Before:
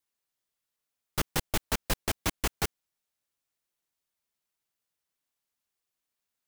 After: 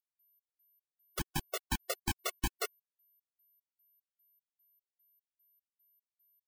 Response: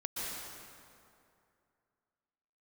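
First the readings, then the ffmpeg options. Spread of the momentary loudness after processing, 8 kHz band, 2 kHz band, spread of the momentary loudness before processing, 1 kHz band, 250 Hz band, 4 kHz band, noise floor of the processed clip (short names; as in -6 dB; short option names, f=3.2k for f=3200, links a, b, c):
5 LU, -6.0 dB, -6.0 dB, 4 LU, -5.5 dB, -5.5 dB, -6.0 dB, under -85 dBFS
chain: -af "acompressor=threshold=-27dB:ratio=6,acrusher=bits=7:mix=0:aa=0.5,dynaudnorm=f=200:g=13:m=4dB,aeval=exprs='val(0)+0.000501*sin(2*PI*13000*n/s)':c=same,afftfilt=real='re*gt(sin(2*PI*2.5*pts/sr)*(1-2*mod(floor(b*sr/1024/370),2)),0)':imag='im*gt(sin(2*PI*2.5*pts/sr)*(1-2*mod(floor(b*sr/1024/370),2)),0)':win_size=1024:overlap=0.75,volume=-3dB"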